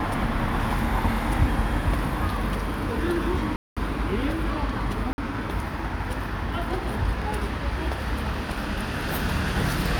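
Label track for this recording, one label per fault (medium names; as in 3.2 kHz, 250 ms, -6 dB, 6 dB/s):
3.560000	3.770000	dropout 206 ms
5.130000	5.180000	dropout 50 ms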